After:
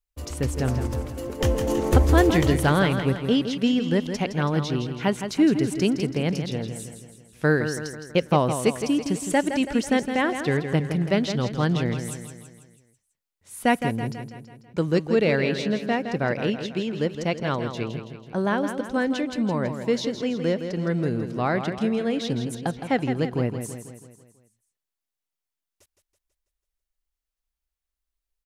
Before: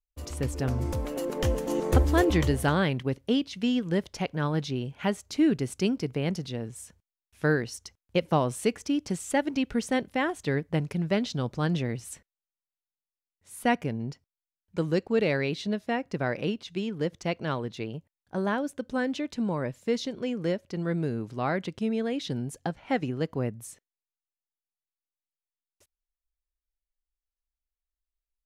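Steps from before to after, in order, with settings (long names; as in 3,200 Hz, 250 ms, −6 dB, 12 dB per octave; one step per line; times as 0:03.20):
0:00.87–0:01.41: downward expander −25 dBFS
repeating echo 164 ms, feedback 52%, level −8.5 dB
level +4 dB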